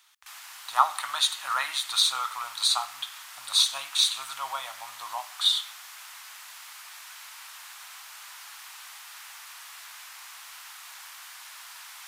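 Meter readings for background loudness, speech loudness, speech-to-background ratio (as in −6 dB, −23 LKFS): −42.5 LKFS, −25.5 LKFS, 17.0 dB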